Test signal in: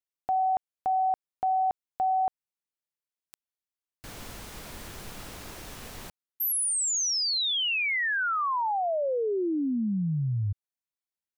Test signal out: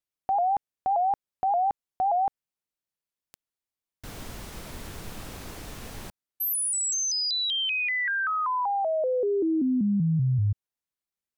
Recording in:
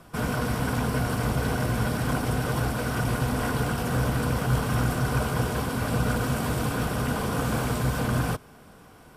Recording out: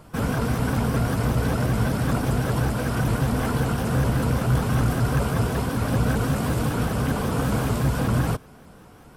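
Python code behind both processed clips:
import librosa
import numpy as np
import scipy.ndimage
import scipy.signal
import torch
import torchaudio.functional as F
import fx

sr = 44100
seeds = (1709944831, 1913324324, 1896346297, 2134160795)

y = fx.low_shelf(x, sr, hz=480.0, db=4.5)
y = np.clip(y, -10.0 ** (-14.0 / 20.0), 10.0 ** (-14.0 / 20.0))
y = fx.vibrato_shape(y, sr, shape='saw_up', rate_hz=5.2, depth_cents=160.0)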